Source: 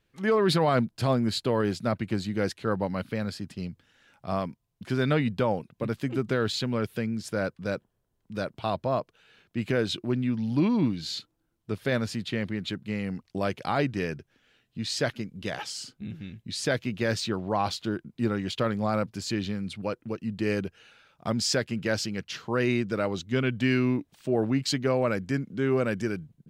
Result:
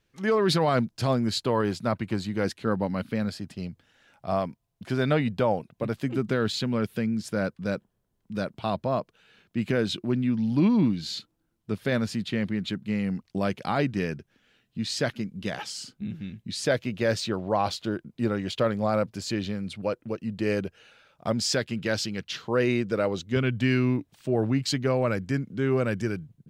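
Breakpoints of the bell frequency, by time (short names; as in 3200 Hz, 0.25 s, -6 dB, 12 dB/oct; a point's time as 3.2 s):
bell +5 dB 0.58 oct
5900 Hz
from 1.43 s 990 Hz
from 2.45 s 230 Hz
from 3.29 s 680 Hz
from 6.04 s 200 Hz
from 16.66 s 570 Hz
from 21.53 s 3600 Hz
from 22.48 s 500 Hz
from 23.36 s 110 Hz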